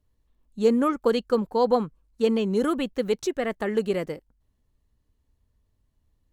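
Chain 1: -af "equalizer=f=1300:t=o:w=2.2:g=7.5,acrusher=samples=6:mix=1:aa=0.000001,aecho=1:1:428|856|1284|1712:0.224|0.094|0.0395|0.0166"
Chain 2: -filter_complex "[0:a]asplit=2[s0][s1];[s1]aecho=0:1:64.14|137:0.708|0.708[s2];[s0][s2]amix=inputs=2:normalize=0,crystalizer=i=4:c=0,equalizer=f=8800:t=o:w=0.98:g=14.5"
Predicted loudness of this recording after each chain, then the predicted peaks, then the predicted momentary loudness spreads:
-22.0 LUFS, -19.5 LUFS; -6.0 dBFS, -2.5 dBFS; 12 LU, 7 LU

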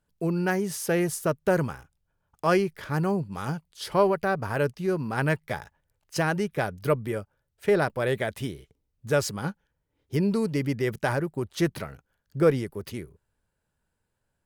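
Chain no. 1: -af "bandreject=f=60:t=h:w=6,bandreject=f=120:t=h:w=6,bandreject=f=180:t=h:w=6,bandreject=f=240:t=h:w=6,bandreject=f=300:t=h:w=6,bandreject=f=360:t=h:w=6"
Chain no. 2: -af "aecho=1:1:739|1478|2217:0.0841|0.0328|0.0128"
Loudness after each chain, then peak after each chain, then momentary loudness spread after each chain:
-27.5 LUFS, -27.5 LUFS; -8.5 dBFS, -8.5 dBFS; 12 LU, 15 LU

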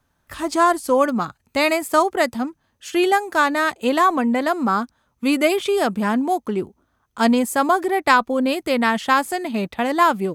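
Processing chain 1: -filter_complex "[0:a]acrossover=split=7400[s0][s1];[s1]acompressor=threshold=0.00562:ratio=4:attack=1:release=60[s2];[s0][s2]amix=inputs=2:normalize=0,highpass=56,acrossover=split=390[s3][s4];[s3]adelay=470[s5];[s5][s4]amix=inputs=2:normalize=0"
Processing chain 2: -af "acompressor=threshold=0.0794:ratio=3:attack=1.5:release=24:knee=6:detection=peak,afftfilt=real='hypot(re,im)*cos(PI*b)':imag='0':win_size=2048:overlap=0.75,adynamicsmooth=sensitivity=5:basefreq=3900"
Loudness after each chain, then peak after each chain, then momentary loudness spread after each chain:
-21.0 LUFS, -29.0 LUFS; -2.0 dBFS, -8.0 dBFS; 8 LU, 7 LU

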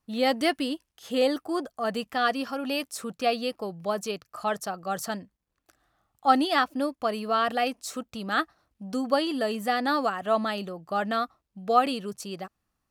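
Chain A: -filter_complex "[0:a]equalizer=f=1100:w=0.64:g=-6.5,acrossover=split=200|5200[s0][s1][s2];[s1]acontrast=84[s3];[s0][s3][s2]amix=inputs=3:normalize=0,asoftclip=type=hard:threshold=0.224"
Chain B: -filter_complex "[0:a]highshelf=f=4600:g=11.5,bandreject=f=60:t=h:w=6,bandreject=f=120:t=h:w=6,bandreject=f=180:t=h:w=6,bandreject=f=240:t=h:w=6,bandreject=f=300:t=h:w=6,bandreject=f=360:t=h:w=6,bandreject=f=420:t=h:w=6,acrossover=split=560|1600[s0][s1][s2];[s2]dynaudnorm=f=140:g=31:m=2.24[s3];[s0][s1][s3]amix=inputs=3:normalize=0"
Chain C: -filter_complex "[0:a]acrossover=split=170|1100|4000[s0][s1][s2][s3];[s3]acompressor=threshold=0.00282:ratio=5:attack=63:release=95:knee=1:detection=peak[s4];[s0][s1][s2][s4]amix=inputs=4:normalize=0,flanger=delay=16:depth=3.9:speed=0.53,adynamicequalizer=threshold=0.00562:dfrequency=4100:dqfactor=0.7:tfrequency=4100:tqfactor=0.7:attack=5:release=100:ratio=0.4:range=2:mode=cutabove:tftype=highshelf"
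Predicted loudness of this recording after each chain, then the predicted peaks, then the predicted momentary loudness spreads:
-25.0 LUFS, -24.0 LUFS, -31.0 LUFS; -13.0 dBFS, -3.0 dBFS, -8.0 dBFS; 10 LU, 11 LU, 12 LU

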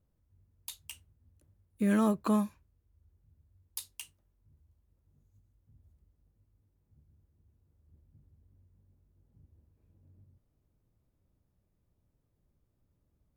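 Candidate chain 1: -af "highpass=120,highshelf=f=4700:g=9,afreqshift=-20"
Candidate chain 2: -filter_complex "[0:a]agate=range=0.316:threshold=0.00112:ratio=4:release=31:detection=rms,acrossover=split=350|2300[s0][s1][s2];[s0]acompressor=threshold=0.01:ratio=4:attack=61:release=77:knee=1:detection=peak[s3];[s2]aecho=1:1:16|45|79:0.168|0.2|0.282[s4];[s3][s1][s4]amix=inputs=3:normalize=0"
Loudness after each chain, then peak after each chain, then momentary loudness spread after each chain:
-32.5 LUFS, -37.0 LUFS; -12.5 dBFS, -19.5 dBFS; 15 LU, 16 LU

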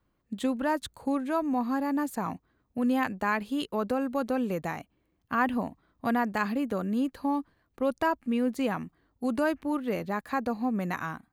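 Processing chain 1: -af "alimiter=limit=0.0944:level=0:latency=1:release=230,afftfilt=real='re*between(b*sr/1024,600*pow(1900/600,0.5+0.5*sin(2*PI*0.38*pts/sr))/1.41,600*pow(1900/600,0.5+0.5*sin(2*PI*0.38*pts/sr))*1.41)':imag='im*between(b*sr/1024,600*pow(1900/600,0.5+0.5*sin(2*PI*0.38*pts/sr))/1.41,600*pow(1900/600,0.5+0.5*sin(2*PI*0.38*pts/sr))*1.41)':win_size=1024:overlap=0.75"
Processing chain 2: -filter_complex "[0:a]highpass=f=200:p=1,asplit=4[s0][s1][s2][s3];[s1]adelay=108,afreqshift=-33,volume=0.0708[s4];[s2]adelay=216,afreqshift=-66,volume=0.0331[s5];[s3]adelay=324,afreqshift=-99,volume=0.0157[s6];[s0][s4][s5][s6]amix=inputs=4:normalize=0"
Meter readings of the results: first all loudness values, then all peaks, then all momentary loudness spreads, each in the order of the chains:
-40.0 LUFS, -31.0 LUFS; -21.0 dBFS, -13.0 dBFS; 11 LU, 8 LU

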